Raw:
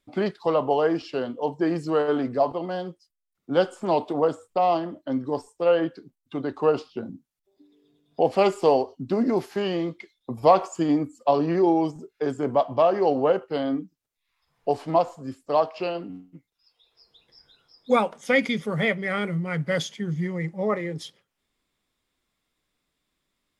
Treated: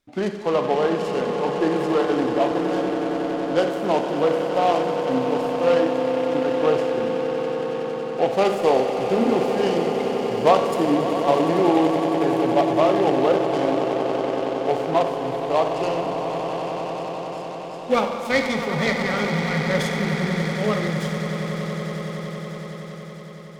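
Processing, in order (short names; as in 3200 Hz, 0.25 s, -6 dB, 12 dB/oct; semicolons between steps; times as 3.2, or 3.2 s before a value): swelling echo 93 ms, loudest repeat 8, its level -13 dB; Schroeder reverb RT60 1.1 s, combs from 31 ms, DRR 6.5 dB; noise-modulated delay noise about 1900 Hz, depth 0.031 ms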